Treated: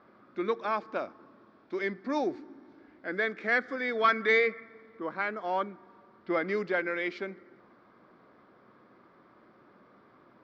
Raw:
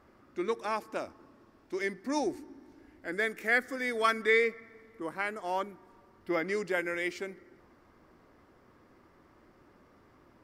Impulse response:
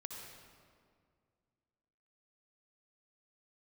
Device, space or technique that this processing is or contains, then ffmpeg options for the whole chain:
overdrive pedal into a guitar cabinet: -filter_complex "[0:a]asettb=1/sr,asplit=3[a][b][c];[a]atrim=end=4.044[d];[b]atrim=start=4.04:end=4.64,asetpts=PTS-STARTPTS,afade=t=in:d=0.004:c=qsin,afade=t=out:st=0.596:d=0.004:c=qsin,equalizer=f=2k:t=o:w=0.98:g=3.5[e];[c]atrim=start=4.636[f];[d][e]acrossfade=d=0.004:c1=hsin:c2=qsin[g];[g][f]acrossfade=d=0.004:c1=qsin:c2=hsin,asplit=2[h][i];[i]highpass=f=720:p=1,volume=11dB,asoftclip=type=tanh:threshold=-11dB[j];[h][j]amix=inputs=2:normalize=0,lowpass=f=5.6k:p=1,volume=-6dB,highpass=75,equalizer=f=82:t=q:w=4:g=-9,equalizer=f=130:t=q:w=4:g=4,equalizer=f=200:t=q:w=4:g=7,equalizer=f=870:t=q:w=4:g=-4,equalizer=f=1.9k:t=q:w=4:g=-6,equalizer=f=2.8k:t=q:w=4:g=-9,lowpass=f=3.9k:w=0.5412,lowpass=f=3.9k:w=1.3066"

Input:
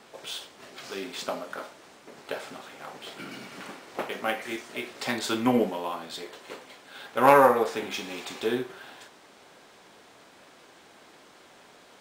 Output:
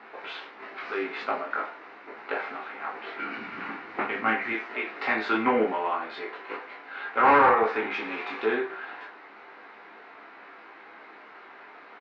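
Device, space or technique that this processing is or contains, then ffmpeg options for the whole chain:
overdrive pedal into a guitar cabinet: -filter_complex "[0:a]asplit=3[a][b][c];[a]afade=t=out:st=3.37:d=0.02[d];[b]asubboost=boost=5.5:cutoff=220,afade=t=in:st=3.37:d=0.02,afade=t=out:st=4.51:d=0.02[e];[c]afade=t=in:st=4.51:d=0.02[f];[d][e][f]amix=inputs=3:normalize=0,aecho=1:1:18|28:0.668|0.562,asplit=2[g][h];[h]highpass=f=720:p=1,volume=19dB,asoftclip=type=tanh:threshold=-3.5dB[i];[g][i]amix=inputs=2:normalize=0,lowpass=f=1.5k:p=1,volume=-6dB,highpass=100,equalizer=f=120:t=q:w=4:g=-6,equalizer=f=170:t=q:w=4:g=-9,equalizer=f=570:t=q:w=4:g=-8,equalizer=f=1.4k:t=q:w=4:g=3,equalizer=f=2.1k:t=q:w=4:g=4,equalizer=f=3.3k:t=q:w=4:g=-9,lowpass=f=3.6k:w=0.5412,lowpass=f=3.6k:w=1.3066,volume=-5dB"

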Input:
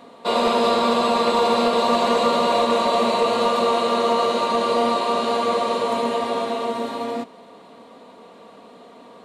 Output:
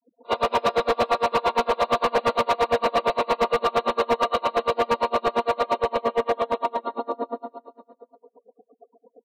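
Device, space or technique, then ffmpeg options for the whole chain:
helicopter radio: -af "afftfilt=real='re*gte(hypot(re,im),0.0355)':imag='im*gte(hypot(re,im),0.0355)':win_size=1024:overlap=0.75,highpass=360,lowpass=2.8k,aecho=1:1:141|282|423|564|705|846|987|1128:0.631|0.36|0.205|0.117|0.0666|0.038|0.0216|0.0123,aeval=exprs='val(0)*pow(10,-33*(0.5-0.5*cos(2*PI*8.7*n/s))/20)':c=same,asoftclip=type=hard:threshold=-20.5dB,volume=5dB"

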